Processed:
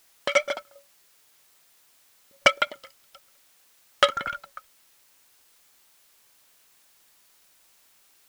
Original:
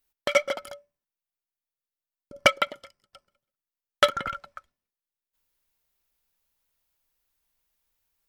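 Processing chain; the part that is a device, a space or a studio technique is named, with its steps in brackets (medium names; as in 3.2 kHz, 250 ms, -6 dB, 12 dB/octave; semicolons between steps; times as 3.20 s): worn cassette (low-pass 8.6 kHz; wow and flutter; level dips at 0.63/2.29 s, 123 ms -16 dB; white noise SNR 29 dB); bass shelf 380 Hz -7 dB; trim +1.5 dB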